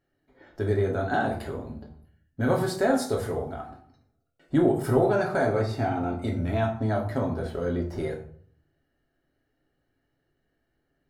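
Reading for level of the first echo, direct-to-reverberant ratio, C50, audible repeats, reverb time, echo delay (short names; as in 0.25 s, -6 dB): none, -1.0 dB, 8.0 dB, none, 0.55 s, none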